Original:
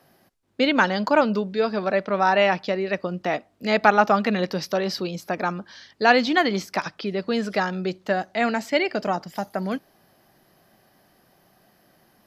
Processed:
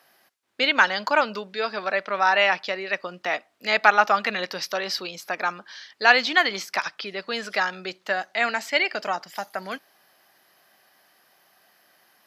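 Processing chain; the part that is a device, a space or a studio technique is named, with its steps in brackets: filter by subtraction (in parallel: low-pass 1.8 kHz 12 dB/octave + polarity flip); on the sum: trim +2 dB

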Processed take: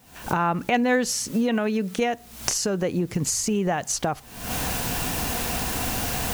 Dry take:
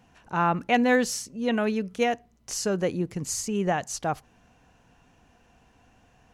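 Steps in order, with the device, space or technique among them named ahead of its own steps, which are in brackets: 1.31–1.98 s: high-pass 140 Hz 24 dB/octave; cheap recorder with automatic gain (white noise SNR 32 dB; recorder AGC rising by 71 dB/s)

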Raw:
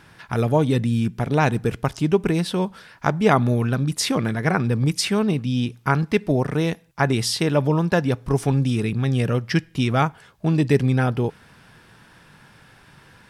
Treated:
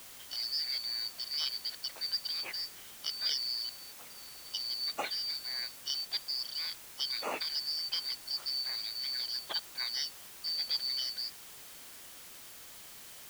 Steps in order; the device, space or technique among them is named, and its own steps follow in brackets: 3.69–4.54 s: amplifier tone stack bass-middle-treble 10-0-1; split-band scrambled radio (four frequency bands reordered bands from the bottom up 4321; band-pass 340–3200 Hz; white noise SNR 12 dB); trim -9 dB

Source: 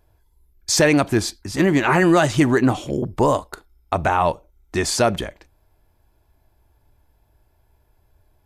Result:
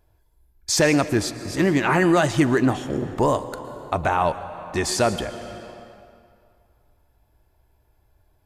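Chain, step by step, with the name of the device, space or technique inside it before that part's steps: compressed reverb return (on a send at -7 dB: reverberation RT60 2.3 s, pre-delay 108 ms + compression, threshold -21 dBFS, peak gain reduction 10 dB); on the sum: trim -2.5 dB

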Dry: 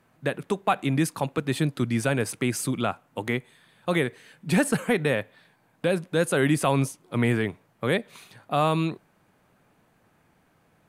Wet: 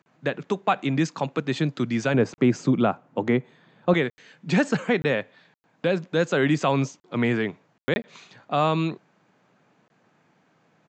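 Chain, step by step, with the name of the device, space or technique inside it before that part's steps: call with lost packets (high-pass 130 Hz 24 dB/octave; resampled via 16 kHz; lost packets bursts); 2.14–3.94 s: tilt shelf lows +7 dB, about 1.4 kHz; trim +1 dB

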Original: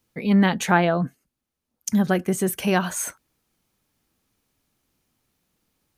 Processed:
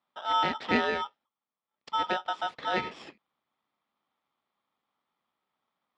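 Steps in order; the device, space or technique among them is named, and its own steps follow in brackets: ring modulator pedal into a guitar cabinet (polarity switched at an audio rate 1.1 kHz; cabinet simulation 100–3400 Hz, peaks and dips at 110 Hz -7 dB, 230 Hz +4 dB, 970 Hz -4 dB, 1.5 kHz -7 dB, 2.8 kHz -6 dB); trim -5.5 dB

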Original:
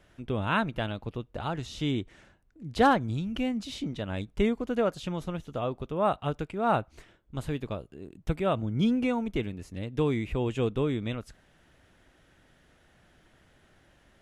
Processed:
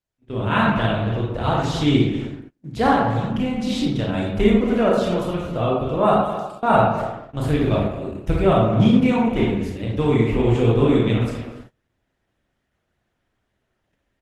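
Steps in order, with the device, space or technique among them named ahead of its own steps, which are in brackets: 6.18–6.63 s: inverse Chebyshev high-pass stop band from 1.6 kHz, stop band 50 dB; speakerphone in a meeting room (reverberation RT60 0.90 s, pre-delay 24 ms, DRR -3 dB; speakerphone echo 250 ms, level -12 dB; level rider gain up to 16 dB; gate -33 dBFS, range -29 dB; trim -3 dB; Opus 16 kbps 48 kHz)

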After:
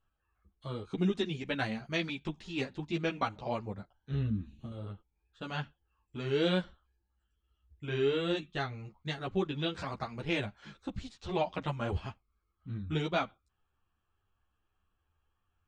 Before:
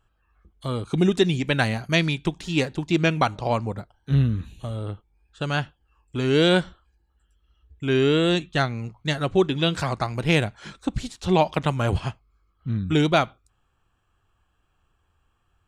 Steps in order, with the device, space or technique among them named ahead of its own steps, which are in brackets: string-machine ensemble chorus (three-phase chorus; low-pass 5.3 kHz 12 dB/octave); 4.30–4.72 s: graphic EQ 250/500/1000/2000/4000/8000 Hz +9/-4/-5/-4/-3/-5 dB; trim -8 dB

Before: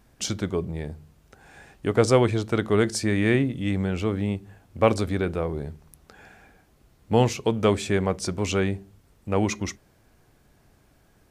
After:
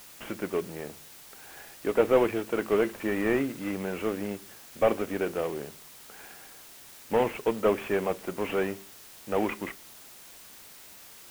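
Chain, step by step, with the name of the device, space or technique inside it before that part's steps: army field radio (band-pass 300–3300 Hz; CVSD coder 16 kbps; white noise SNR 19 dB)

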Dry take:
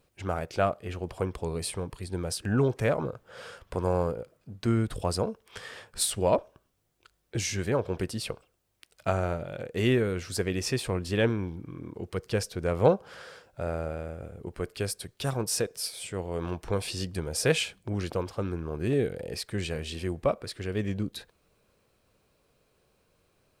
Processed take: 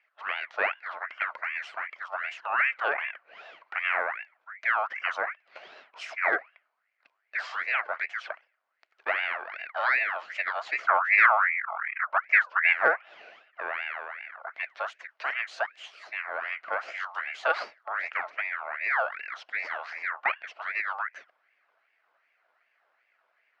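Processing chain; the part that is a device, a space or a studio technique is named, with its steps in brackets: 10.87–12.73 s: tilt EQ -3.5 dB/octave; voice changer toy (ring modulator with a swept carrier 1.6 kHz, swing 40%, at 2.6 Hz; cabinet simulation 570–3800 Hz, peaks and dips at 660 Hz +8 dB, 960 Hz -3 dB, 1.4 kHz +3 dB, 2 kHz +3 dB, 3.6 kHz -8 dB)

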